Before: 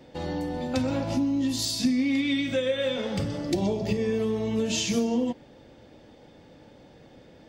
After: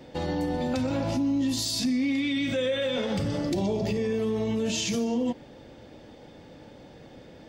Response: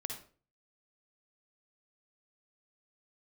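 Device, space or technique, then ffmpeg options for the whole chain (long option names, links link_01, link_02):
clipper into limiter: -af "asoftclip=type=hard:threshold=-16dB,alimiter=limit=-23.5dB:level=0:latency=1:release=42,volume=3.5dB"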